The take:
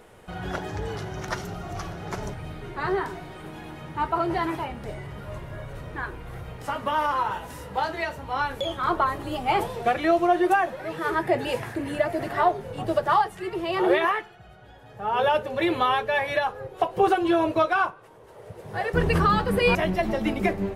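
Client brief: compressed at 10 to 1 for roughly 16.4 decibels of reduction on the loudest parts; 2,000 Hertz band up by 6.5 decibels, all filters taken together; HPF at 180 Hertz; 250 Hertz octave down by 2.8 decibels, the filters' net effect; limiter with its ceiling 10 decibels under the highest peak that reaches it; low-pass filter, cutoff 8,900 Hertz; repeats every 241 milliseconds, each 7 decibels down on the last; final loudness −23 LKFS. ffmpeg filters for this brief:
ffmpeg -i in.wav -af "highpass=180,lowpass=8900,equalizer=frequency=250:width_type=o:gain=-3.5,equalizer=frequency=2000:width_type=o:gain=8.5,acompressor=threshold=-32dB:ratio=10,alimiter=level_in=4dB:limit=-24dB:level=0:latency=1,volume=-4dB,aecho=1:1:241|482|723|964|1205:0.447|0.201|0.0905|0.0407|0.0183,volume=14dB" out.wav

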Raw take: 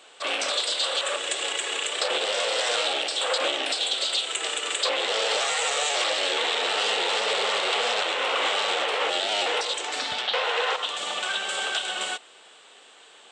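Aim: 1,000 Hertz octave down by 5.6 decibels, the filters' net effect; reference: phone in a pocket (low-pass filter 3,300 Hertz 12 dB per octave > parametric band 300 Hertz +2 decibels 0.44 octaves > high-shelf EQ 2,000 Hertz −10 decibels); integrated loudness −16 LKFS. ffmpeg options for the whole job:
ffmpeg -i in.wav -af "lowpass=3300,equalizer=frequency=300:width_type=o:width=0.44:gain=2,equalizer=frequency=1000:width_type=o:gain=-5,highshelf=frequency=2000:gain=-10,volume=16dB" out.wav

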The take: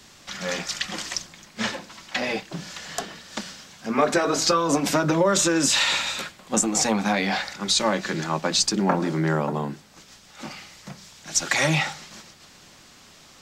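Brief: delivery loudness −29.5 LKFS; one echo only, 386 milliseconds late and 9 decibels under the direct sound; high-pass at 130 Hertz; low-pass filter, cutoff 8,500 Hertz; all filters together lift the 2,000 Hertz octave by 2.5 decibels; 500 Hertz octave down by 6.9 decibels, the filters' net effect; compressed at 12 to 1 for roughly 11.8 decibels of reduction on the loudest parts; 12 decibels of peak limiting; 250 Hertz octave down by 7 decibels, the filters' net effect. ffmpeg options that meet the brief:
ffmpeg -i in.wav -af "highpass=130,lowpass=8500,equalizer=frequency=250:width_type=o:gain=-7,equalizer=frequency=500:width_type=o:gain=-7,equalizer=frequency=2000:width_type=o:gain=3.5,acompressor=threshold=-29dB:ratio=12,alimiter=level_in=0.5dB:limit=-24dB:level=0:latency=1,volume=-0.5dB,aecho=1:1:386:0.355,volume=5.5dB" out.wav

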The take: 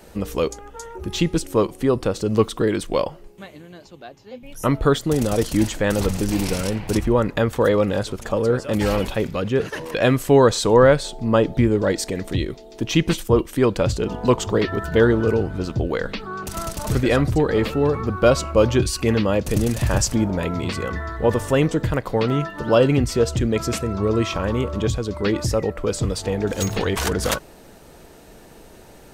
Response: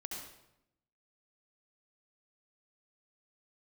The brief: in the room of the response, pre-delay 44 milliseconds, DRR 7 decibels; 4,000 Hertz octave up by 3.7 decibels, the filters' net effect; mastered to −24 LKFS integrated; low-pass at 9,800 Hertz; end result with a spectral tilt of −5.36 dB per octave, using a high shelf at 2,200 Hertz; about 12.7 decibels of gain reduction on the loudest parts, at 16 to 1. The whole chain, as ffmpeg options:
-filter_complex "[0:a]lowpass=9800,highshelf=frequency=2200:gain=-4,equalizer=frequency=4000:width_type=o:gain=8.5,acompressor=threshold=-22dB:ratio=16,asplit=2[link_01][link_02];[1:a]atrim=start_sample=2205,adelay=44[link_03];[link_02][link_03]afir=irnorm=-1:irlink=0,volume=-6dB[link_04];[link_01][link_04]amix=inputs=2:normalize=0,volume=3dB"

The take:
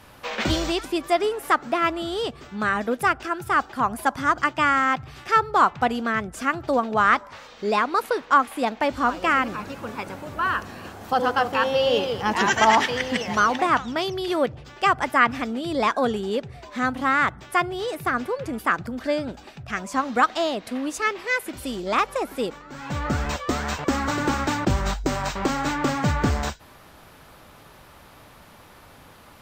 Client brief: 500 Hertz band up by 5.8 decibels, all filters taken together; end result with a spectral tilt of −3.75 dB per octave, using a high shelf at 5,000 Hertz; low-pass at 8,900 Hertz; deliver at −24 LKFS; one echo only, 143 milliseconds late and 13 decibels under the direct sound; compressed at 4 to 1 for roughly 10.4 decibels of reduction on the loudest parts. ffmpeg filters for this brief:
ffmpeg -i in.wav -af "lowpass=8900,equalizer=frequency=500:width_type=o:gain=7,highshelf=frequency=5000:gain=-4,acompressor=threshold=-24dB:ratio=4,aecho=1:1:143:0.224,volume=4dB" out.wav

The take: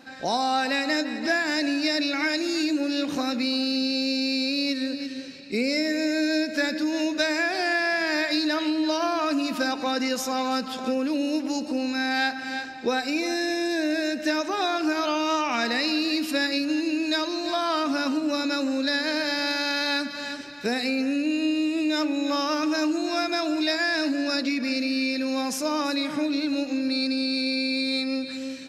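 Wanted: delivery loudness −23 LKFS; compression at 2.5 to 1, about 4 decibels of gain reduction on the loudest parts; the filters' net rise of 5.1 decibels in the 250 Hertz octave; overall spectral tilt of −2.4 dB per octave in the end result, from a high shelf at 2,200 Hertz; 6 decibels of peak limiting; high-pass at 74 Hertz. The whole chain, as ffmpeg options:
ffmpeg -i in.wav -af "highpass=74,equalizer=frequency=250:width_type=o:gain=6,highshelf=frequency=2200:gain=4,acompressor=threshold=-23dB:ratio=2.5,volume=3.5dB,alimiter=limit=-15.5dB:level=0:latency=1" out.wav

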